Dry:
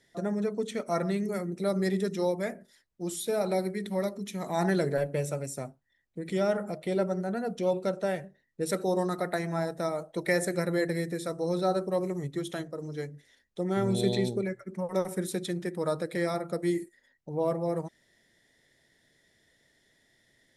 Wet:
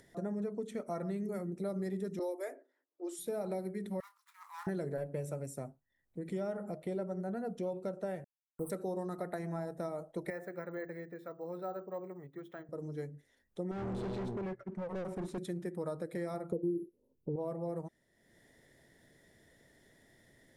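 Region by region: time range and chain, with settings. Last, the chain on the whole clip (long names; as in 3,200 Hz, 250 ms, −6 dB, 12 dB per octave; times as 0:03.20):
0:02.19–0:03.19: Chebyshev high-pass filter 260 Hz, order 10 + high-shelf EQ 7,800 Hz +11.5 dB + low-pass that shuts in the quiet parts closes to 760 Hz, open at −27 dBFS
0:04.00–0:04.67: running median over 15 samples + Butterworth high-pass 960 Hz 72 dB per octave + double-tracking delay 31 ms −13 dB
0:08.24–0:08.70: hold until the input has moved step −36.5 dBFS + linear-phase brick-wall band-stop 1,400–7,900 Hz
0:10.30–0:12.69: resonant band-pass 1,600 Hz, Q 1 + spectral tilt −2.5 dB per octave + bad sample-rate conversion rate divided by 2×, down filtered, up hold
0:13.71–0:15.38: leveller curve on the samples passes 1 + hard clipping −31.5 dBFS + high-frequency loss of the air 100 metres
0:16.52–0:17.36: linear-phase brick-wall band-stop 1,100–10,000 Hz + low shelf with overshoot 560 Hz +7.5 dB, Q 3
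whole clip: downward compressor 4 to 1, threshold −30 dBFS; parametric band 4,000 Hz −10.5 dB 2.6 octaves; upward compression, threshold −50 dBFS; level −3.5 dB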